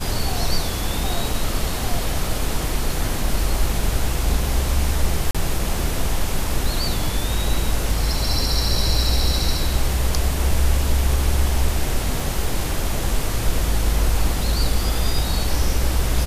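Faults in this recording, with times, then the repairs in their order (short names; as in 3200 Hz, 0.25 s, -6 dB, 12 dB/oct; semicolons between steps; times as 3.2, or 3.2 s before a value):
5.31–5.35 gap 36 ms
12.2 gap 2 ms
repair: interpolate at 5.31, 36 ms; interpolate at 12.2, 2 ms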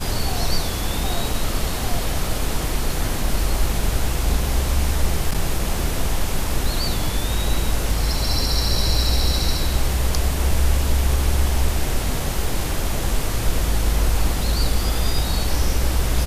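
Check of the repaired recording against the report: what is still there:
none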